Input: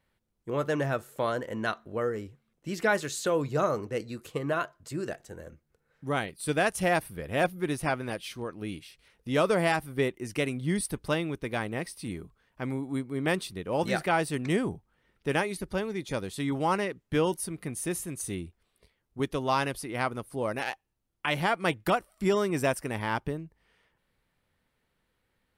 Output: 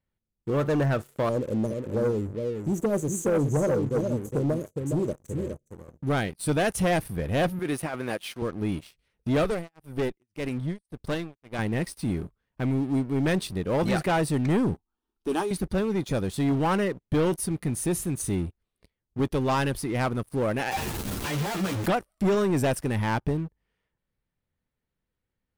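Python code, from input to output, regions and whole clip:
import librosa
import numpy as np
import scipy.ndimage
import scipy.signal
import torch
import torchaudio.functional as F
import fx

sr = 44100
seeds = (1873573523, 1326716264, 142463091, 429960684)

y = fx.chain(x, sr, fx.brickwall_bandstop(low_hz=630.0, high_hz=5800.0),
    fx.echo_single(ms=414, db=-7.0), at=(1.29, 6.08))
y = fx.chain(y, sr, fx.highpass(hz=540.0, slope=6),
    fx.peak_eq(hz=5700.0, db=-5.0, octaves=1.3),
    fx.over_compress(threshold_db=-34.0, ratio=-1.0), at=(7.59, 8.42))
y = fx.chain(y, sr, fx.tremolo(hz=1.8, depth=0.99),
    fx.tube_stage(drive_db=27.0, bias=0.8), at=(9.44, 11.59))
y = fx.chain(y, sr, fx.peak_eq(hz=74.0, db=-9.0, octaves=2.2),
    fx.fixed_phaser(hz=540.0, stages=6),
    fx.doubler(ms=12.0, db=-11.5), at=(14.74, 15.51))
y = fx.chain(y, sr, fx.clip_1bit(),
    fx.highpass(hz=150.0, slope=6),
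    fx.ensemble(), at=(20.71, 21.86))
y = fx.low_shelf(y, sr, hz=360.0, db=9.0)
y = fx.leveller(y, sr, passes=3)
y = y * librosa.db_to_amplitude(-8.0)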